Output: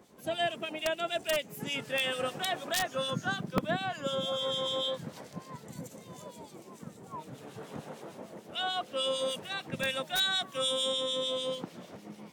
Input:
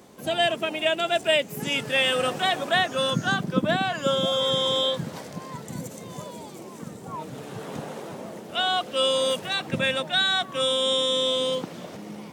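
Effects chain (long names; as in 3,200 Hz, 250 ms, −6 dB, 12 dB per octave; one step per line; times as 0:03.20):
0:09.79–0:10.92: high-shelf EQ 4,500 Hz +8 dB
wrap-around overflow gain 10.5 dB
two-band tremolo in antiphase 6.7 Hz, depth 70%, crossover 2,200 Hz
level −5.5 dB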